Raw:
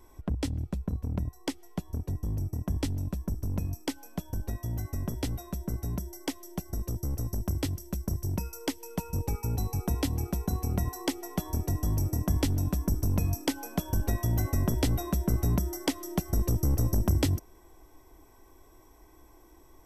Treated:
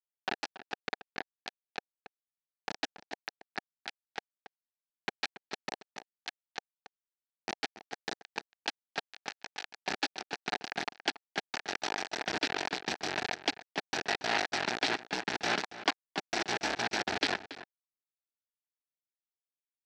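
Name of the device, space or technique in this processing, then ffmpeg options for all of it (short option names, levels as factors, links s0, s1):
hand-held game console: -filter_complex "[0:a]equalizer=f=1900:t=o:w=1.1:g=-2.5,asettb=1/sr,asplit=3[s0][s1][s2];[s0]atrim=end=4.974[s3];[s1]atrim=start=4.97:end=5.71,asetpts=PTS-STARTPTS,afade=t=in:d=0.004:c=qsin,afade=t=out:st=0.736:d=0.004:c=qsin,aecho=1:1:4.7:0.67,atrim=end_sample=32634[s4];[s2]atrim=start=5.706[s5];[s3][s4]acrossfade=d=0.004:c1=hsin:c2=qsin[s6];[s6][s5]acrossfade=d=0.004:c1=qsin:c2=hsin,acrusher=bits=3:mix=0:aa=0.000001,highpass=500,equalizer=f=540:t=q:w=4:g=-9,equalizer=f=770:t=q:w=4:g=4,equalizer=f=1100:t=q:w=4:g=-8,equalizer=f=1700:t=q:w=4:g=7,equalizer=f=2500:t=q:w=4:g=4,equalizer=f=4200:t=q:w=4:g=4,lowpass=f=4900:w=0.5412,lowpass=f=4900:w=1.3066,asettb=1/sr,asplit=3[s7][s8][s9];[s7]atrim=end=15.634[s10];[s8]atrim=start=15.63:end=16.08,asetpts=PTS-STARTPTS,afade=t=in:d=0.004:c=qsin,afade=t=out:st=0.446:d=0.004:c=qsin,equalizer=f=1100:t=o:w=0.66:g=11.5[s11];[s9]atrim=start=16.076[s12];[s10][s11]acrossfade=d=0.004:c1=hsin:c2=qsin[s13];[s13][s12]acrossfade=d=0.004:c1=qsin:c2=hsin,asplit=2[s14][s15];[s15]adelay=279.9,volume=0.2,highshelf=f=4000:g=-6.3[s16];[s14][s16]amix=inputs=2:normalize=0"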